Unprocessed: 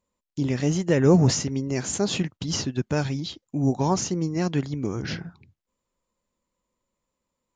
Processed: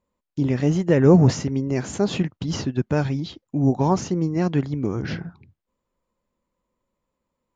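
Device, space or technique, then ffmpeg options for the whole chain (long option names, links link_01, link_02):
through cloth: -af "highshelf=frequency=3700:gain=-13.5,volume=3.5dB"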